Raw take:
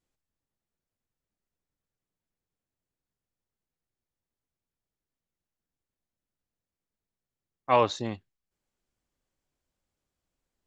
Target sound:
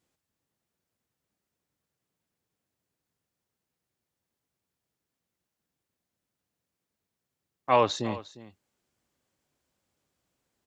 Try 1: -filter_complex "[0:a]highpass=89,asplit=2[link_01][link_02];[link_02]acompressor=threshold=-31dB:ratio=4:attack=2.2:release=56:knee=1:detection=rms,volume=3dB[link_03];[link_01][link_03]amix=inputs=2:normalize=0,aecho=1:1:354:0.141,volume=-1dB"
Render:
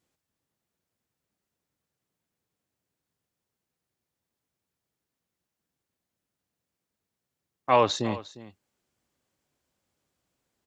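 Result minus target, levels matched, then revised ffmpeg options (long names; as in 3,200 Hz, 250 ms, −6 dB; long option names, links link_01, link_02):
downward compressor: peak gain reduction −7 dB
-filter_complex "[0:a]highpass=89,asplit=2[link_01][link_02];[link_02]acompressor=threshold=-40.5dB:ratio=4:attack=2.2:release=56:knee=1:detection=rms,volume=3dB[link_03];[link_01][link_03]amix=inputs=2:normalize=0,aecho=1:1:354:0.141,volume=-1dB"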